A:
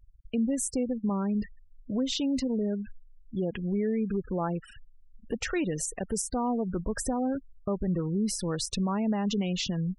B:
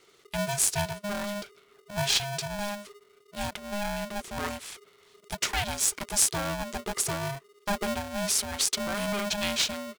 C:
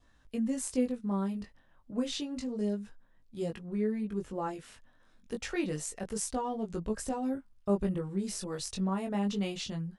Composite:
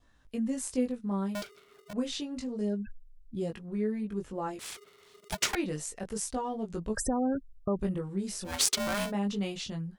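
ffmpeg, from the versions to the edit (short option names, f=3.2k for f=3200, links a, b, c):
-filter_complex "[1:a]asplit=3[a][b][c];[0:a]asplit=2[d][e];[2:a]asplit=6[f][g][h][i][j][k];[f]atrim=end=1.352[l];[a]atrim=start=1.348:end=1.932[m];[g]atrim=start=1.928:end=2.85[n];[d]atrim=start=2.61:end=3.49[o];[h]atrim=start=3.25:end=4.592[p];[b]atrim=start=4.588:end=5.552[q];[i]atrim=start=5.548:end=6.972[r];[e]atrim=start=6.968:end=7.792[s];[j]atrim=start=7.788:end=8.54[t];[c]atrim=start=8.44:end=9.12[u];[k]atrim=start=9.02[v];[l][m]acrossfade=d=0.004:c1=hsin:c2=hsin[w];[w][n]acrossfade=d=0.004:c1=hsin:c2=hsin[x];[x][o]acrossfade=d=0.24:c1=tri:c2=tri[y];[y][p]acrossfade=d=0.24:c1=tri:c2=tri[z];[z][q]acrossfade=d=0.004:c1=hsin:c2=hsin[aa];[aa][r]acrossfade=d=0.004:c1=hsin:c2=hsin[ab];[ab][s]acrossfade=d=0.004:c1=hsin:c2=hsin[ac];[ac][t]acrossfade=d=0.004:c1=hsin:c2=hsin[ad];[ad][u]acrossfade=d=0.1:c1=tri:c2=tri[ae];[ae][v]acrossfade=d=0.1:c1=tri:c2=tri"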